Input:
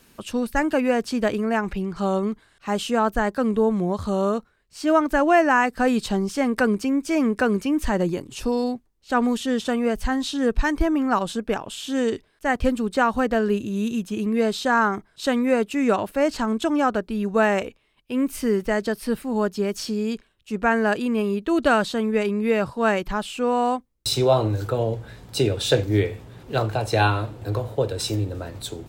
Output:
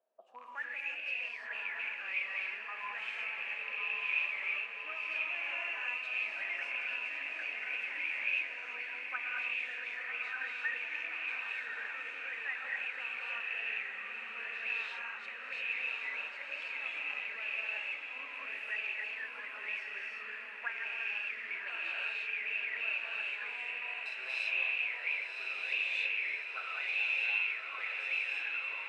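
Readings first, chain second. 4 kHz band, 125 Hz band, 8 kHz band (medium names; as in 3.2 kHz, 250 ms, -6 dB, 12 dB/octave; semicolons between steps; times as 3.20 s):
-11.0 dB, under -40 dB, under -25 dB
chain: rattle on loud lows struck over -27 dBFS, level -15 dBFS; high-pass 420 Hz 12 dB/octave; gated-style reverb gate 370 ms rising, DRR -6.5 dB; auto-wah 630–2600 Hz, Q 13, up, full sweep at -14.5 dBFS; echo that smears into a reverb 1129 ms, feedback 61%, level -4 dB; trim -6 dB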